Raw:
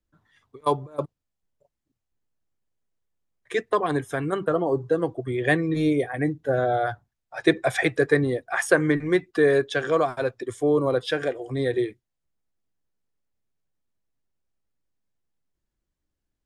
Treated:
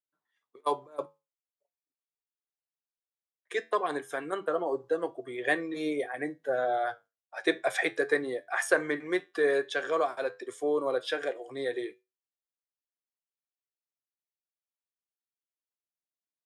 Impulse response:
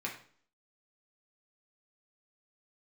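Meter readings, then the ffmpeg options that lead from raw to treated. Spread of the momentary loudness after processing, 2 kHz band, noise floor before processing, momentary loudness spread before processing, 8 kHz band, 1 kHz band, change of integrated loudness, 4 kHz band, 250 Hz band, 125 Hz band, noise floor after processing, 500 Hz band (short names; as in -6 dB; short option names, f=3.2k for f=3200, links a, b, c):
9 LU, -4.5 dB, -82 dBFS, 8 LU, -4.5 dB, -4.5 dB, -6.5 dB, -4.5 dB, -11.0 dB, -23.5 dB, under -85 dBFS, -6.5 dB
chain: -af "highpass=420,agate=range=-13dB:threshold=-49dB:ratio=16:detection=peak,flanger=delay=9.2:depth=2.2:regen=-76:speed=0.16:shape=sinusoidal"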